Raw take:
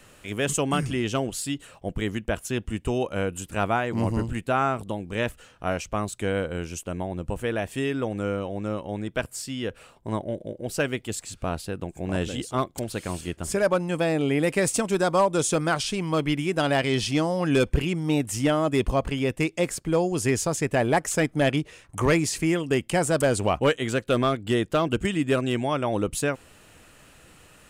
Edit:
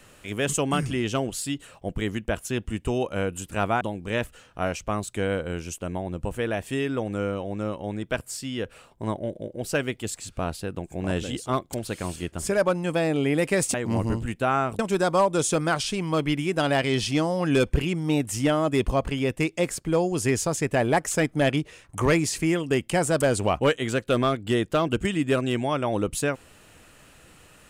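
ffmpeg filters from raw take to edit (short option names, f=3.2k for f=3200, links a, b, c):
-filter_complex "[0:a]asplit=4[a][b][c][d];[a]atrim=end=3.812[e];[b]atrim=start=4.858:end=14.792[f];[c]atrim=start=3.808:end=4.862[g];[d]atrim=start=14.788[h];[e][f]acrossfade=d=0.004:c1=hsin:c2=hsin[i];[i][g]acrossfade=d=0.004:c1=hsin:c2=hsin[j];[j][h]acrossfade=d=0.004:c1=hsin:c2=hsin"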